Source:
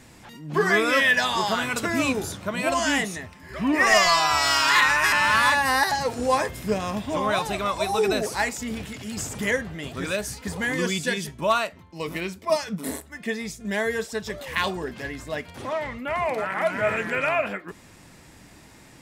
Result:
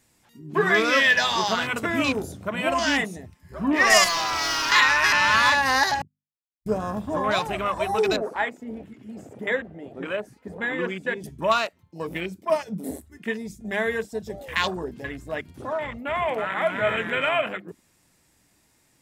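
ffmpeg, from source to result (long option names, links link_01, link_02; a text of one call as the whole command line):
ffmpeg -i in.wav -filter_complex "[0:a]asettb=1/sr,asplit=3[link_01][link_02][link_03];[link_01]atrim=end=4.044[link_04];[link_02]atrim=start=4.04:end=4.72,asetpts=PTS-STARTPTS,afade=type=in:duration=0.004:curve=qsin,afade=type=out:start_time=0.676:duration=0.004:curve=qsin,asoftclip=type=hard:threshold=-24dB[link_05];[link_03]atrim=start=4.716[link_06];[link_04][link_05]acrossfade=duration=0.004:curve1=hsin:curve2=qsin[link_07];[link_07][link_06]acrossfade=duration=0.004:curve1=qsin:curve2=hsin,asettb=1/sr,asplit=3[link_08][link_09][link_10];[link_08]atrim=end=8.164[link_11];[link_09]atrim=start=8.16:end=11.24,asetpts=PTS-STARTPTS,afade=type=in:duration=0.004:curve=qsin,afade=type=out:start_time=3.076:duration=0.004:curve=qsin,acrossover=split=220 2500:gain=0.251 1 0.126[link_12][link_13][link_14];[link_12][link_13][link_14]amix=inputs=3:normalize=0[link_15];[link_10]atrim=start=11.236[link_16];[link_11][link_15]acrossfade=duration=0.004:curve1=hsin:curve2=qsin[link_17];[link_17][link_16]acrossfade=duration=0.004:curve1=qsin:curve2=hsin,asplit=3[link_18][link_19][link_20];[link_18]atrim=end=6.02,asetpts=PTS-STARTPTS,afade=type=out:start_time=6.016:duration=0.004:curve=hsin[link_21];[link_19]atrim=start=6.02:end=6.66,asetpts=PTS-STARTPTS,volume=0[link_22];[link_20]atrim=start=6.66,asetpts=PTS-STARTPTS,afade=type=in:duration=0.004:curve=hsin[link_23];[link_21][link_22][link_23]concat=n=3:v=0:a=1,bandreject=frequency=50:width_type=h:width=6,bandreject=frequency=100:width_type=h:width=6,bandreject=frequency=150:width_type=h:width=6,bandreject=frequency=200:width_type=h:width=6,bandreject=frequency=250:width_type=h:width=6,afwtdn=0.0224,highshelf=frequency=5800:gain=11.5" out.wav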